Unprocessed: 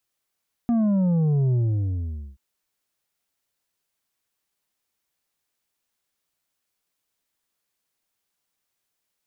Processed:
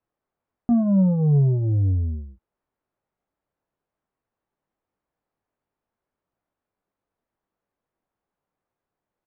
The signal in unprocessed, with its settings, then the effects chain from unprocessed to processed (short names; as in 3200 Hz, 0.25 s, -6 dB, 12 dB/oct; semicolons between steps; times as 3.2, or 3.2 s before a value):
sub drop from 240 Hz, over 1.68 s, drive 6 dB, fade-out 0.84 s, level -18.5 dB
LPF 1000 Hz 12 dB/oct; in parallel at -1.5 dB: limiter -29 dBFS; on the sum: doubler 21 ms -9 dB